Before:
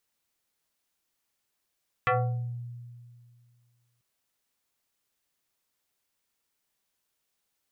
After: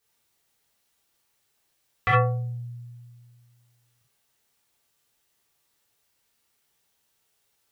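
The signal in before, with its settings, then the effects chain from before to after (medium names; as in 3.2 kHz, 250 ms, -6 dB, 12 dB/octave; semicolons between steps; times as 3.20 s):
FM tone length 1.94 s, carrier 120 Hz, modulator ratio 5.21, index 3.6, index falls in 0.61 s exponential, decay 2.16 s, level -20 dB
gated-style reverb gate 90 ms flat, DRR -7 dB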